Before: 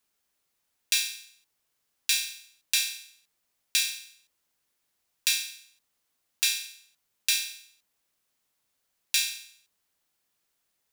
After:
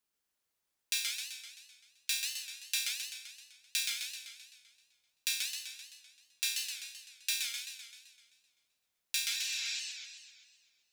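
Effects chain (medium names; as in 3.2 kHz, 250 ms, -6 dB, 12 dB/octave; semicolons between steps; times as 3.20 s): spectral replace 9.29–9.77 s, 570–7900 Hz before; modulated delay 129 ms, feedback 59%, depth 210 cents, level -4 dB; trim -8.5 dB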